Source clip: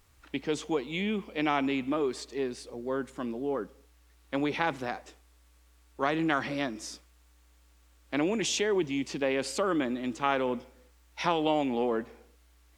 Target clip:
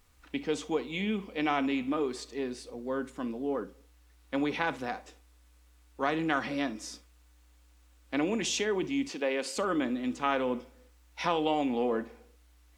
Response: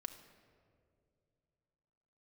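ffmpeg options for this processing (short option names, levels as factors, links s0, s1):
-filter_complex "[0:a]asettb=1/sr,asplit=3[s0][s1][s2];[s0]atrim=end=9.084[s3];[s1]atrim=start=9.08:end=9.57,asetpts=PTS-STARTPTS,afade=t=in:d=0.004:c=qsin,afade=t=out:st=0.486:d=0.004:c=qsin,highpass=290[s4];[s2]atrim=start=9.566[s5];[s3][s4]acrossfade=d=0.004:c1=hsin:c2=qsin[s6];[s6][s5]acrossfade=d=0.004:c1=qsin:c2=hsin[s7];[1:a]atrim=start_sample=2205,atrim=end_sample=3087[s8];[s7][s8]afir=irnorm=-1:irlink=0,volume=1.33"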